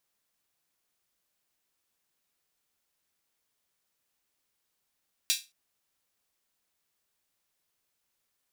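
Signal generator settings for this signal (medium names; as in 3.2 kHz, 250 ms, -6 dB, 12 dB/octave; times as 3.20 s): open hi-hat length 0.22 s, high-pass 3.3 kHz, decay 0.25 s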